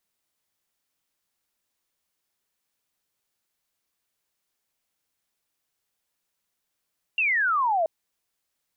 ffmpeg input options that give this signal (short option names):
-f lavfi -i "aevalsrc='0.1*clip(t/0.002,0,1)*clip((0.68-t)/0.002,0,1)*sin(2*PI*2800*0.68/log(620/2800)*(exp(log(620/2800)*t/0.68)-1))':d=0.68:s=44100"